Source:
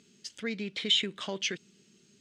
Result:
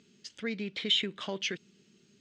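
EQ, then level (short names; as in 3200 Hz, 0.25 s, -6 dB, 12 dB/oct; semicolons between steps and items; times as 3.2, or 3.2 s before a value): air absorption 74 m; 0.0 dB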